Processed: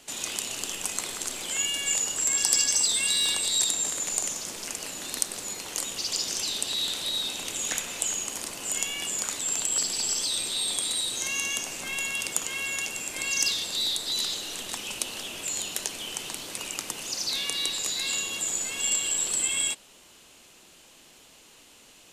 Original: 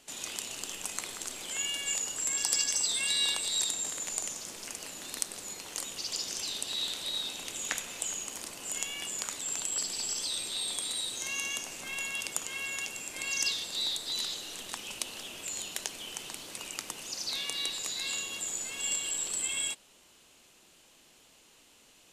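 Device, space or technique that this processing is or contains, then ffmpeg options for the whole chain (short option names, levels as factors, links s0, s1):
one-band saturation: -filter_complex "[0:a]acrossover=split=430|5000[s0][s1][s2];[s1]asoftclip=type=tanh:threshold=0.0237[s3];[s0][s3][s2]amix=inputs=3:normalize=0,volume=2.11"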